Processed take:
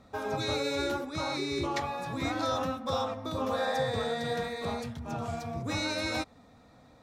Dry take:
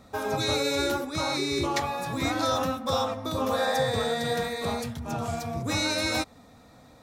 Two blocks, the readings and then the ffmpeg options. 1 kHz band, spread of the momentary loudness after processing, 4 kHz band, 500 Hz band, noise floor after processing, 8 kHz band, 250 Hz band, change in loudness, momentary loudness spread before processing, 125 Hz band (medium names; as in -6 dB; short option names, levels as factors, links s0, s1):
-4.0 dB, 6 LU, -6.0 dB, -4.0 dB, -58 dBFS, -9.0 dB, -4.0 dB, -4.5 dB, 6 LU, -4.0 dB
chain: -af "highshelf=f=7800:g=-12,volume=0.631"